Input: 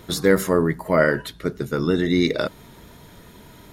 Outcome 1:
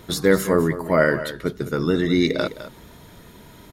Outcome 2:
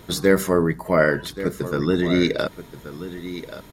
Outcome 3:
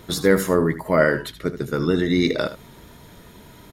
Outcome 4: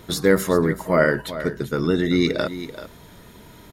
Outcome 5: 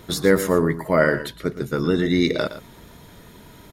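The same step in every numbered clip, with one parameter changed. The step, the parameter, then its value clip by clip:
echo, time: 208, 1129, 77, 386, 116 ms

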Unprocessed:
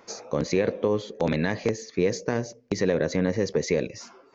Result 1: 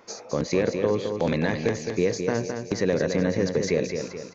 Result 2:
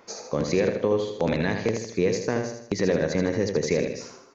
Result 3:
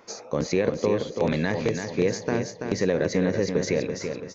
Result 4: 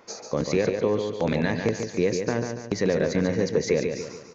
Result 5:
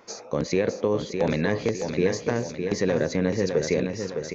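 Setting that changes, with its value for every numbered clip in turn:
feedback echo, time: 214, 79, 333, 143, 609 ms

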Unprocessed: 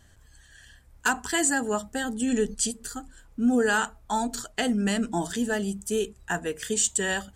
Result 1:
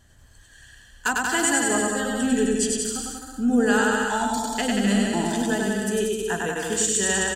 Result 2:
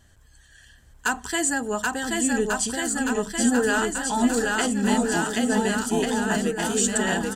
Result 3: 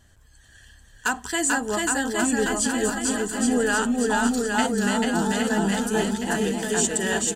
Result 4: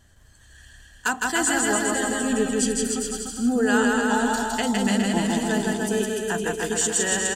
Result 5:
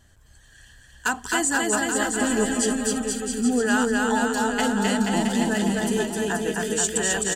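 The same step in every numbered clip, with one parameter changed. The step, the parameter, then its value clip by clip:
bouncing-ball echo, first gap: 0.1, 0.78, 0.44, 0.16, 0.26 s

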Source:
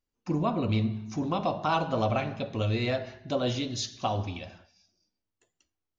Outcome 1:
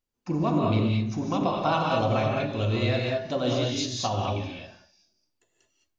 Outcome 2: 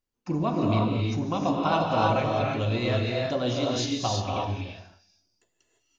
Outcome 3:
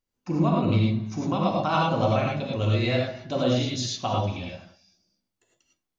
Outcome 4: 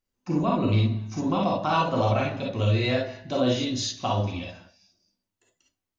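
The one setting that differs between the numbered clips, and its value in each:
non-linear reverb, gate: 240, 370, 130, 80 ms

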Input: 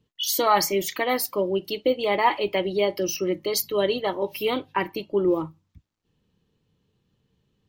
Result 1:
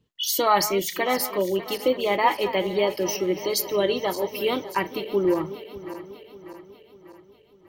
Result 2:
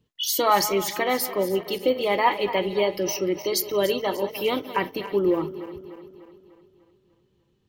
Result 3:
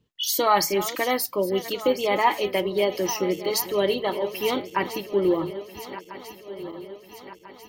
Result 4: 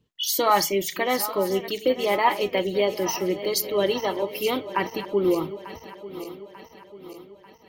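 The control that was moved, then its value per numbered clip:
regenerating reverse delay, time: 0.297, 0.149, 0.672, 0.446 s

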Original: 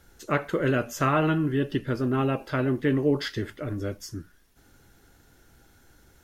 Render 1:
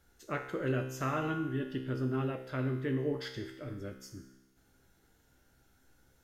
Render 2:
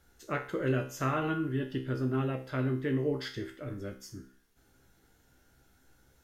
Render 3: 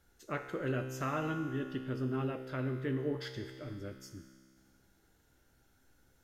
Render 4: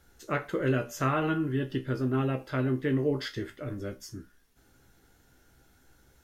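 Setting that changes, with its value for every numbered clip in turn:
resonator, decay: 1, 0.44, 2.1, 0.18 s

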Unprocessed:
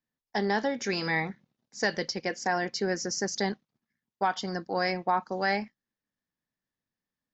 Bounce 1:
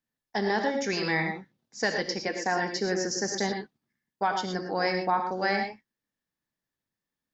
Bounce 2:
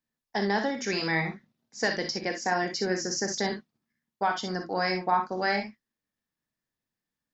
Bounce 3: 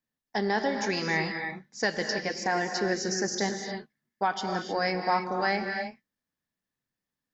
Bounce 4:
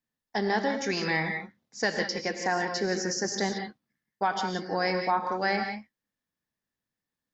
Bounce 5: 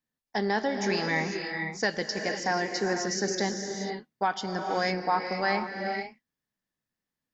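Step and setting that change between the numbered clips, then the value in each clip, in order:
non-linear reverb, gate: 140, 80, 330, 200, 520 ms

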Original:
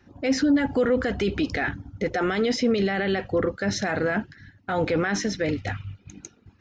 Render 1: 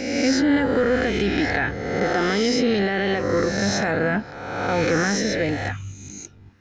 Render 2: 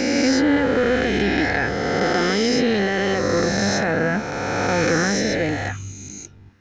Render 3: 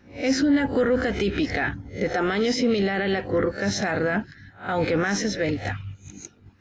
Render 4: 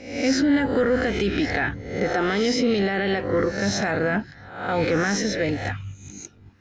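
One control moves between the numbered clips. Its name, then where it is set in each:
spectral swells, rising 60 dB in: 1.4, 3.1, 0.3, 0.66 s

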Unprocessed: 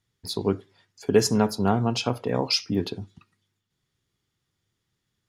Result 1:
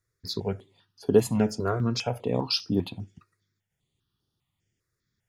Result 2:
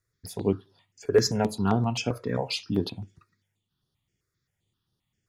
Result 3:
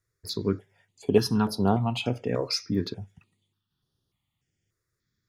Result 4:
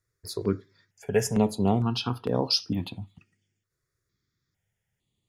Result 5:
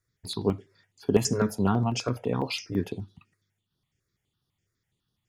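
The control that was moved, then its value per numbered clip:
step phaser, rate: 5, 7.6, 3.4, 2.2, 12 Hz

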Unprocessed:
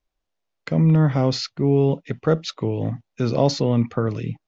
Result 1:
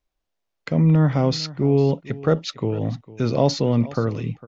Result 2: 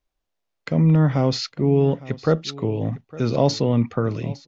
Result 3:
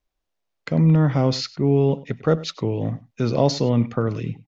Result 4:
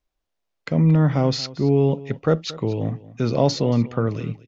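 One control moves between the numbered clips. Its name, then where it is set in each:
echo, time: 453, 858, 99, 229 ms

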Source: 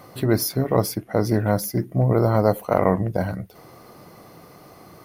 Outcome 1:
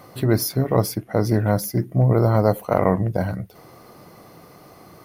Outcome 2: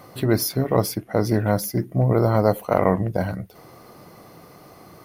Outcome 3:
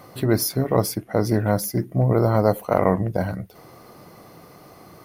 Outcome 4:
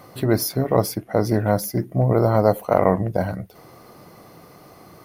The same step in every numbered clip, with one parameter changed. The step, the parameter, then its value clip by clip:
dynamic EQ, frequency: 120, 3000, 8400, 670 Hz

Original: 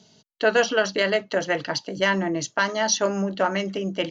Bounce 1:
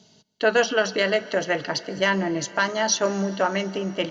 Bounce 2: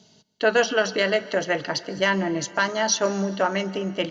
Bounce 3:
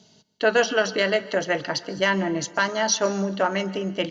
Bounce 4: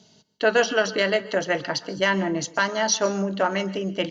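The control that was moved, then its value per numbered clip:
plate-style reverb, RT60: 5.3, 2.5, 1.2, 0.51 s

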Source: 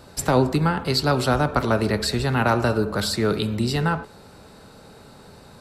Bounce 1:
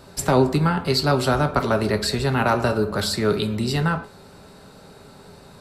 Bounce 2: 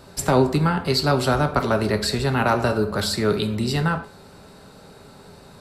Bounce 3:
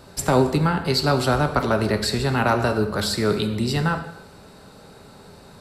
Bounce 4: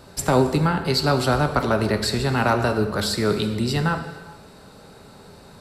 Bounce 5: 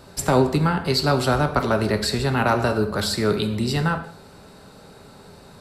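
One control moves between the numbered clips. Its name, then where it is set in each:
non-linear reverb, gate: 80, 120, 330, 480, 220 ms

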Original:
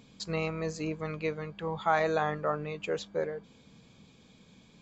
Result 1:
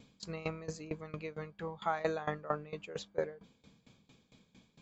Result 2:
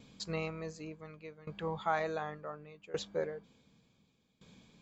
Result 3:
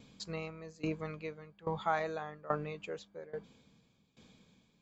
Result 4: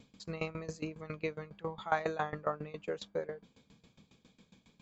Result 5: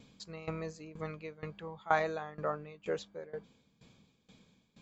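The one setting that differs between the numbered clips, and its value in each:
dB-ramp tremolo, rate: 4.4, 0.68, 1.2, 7.3, 2.1 Hz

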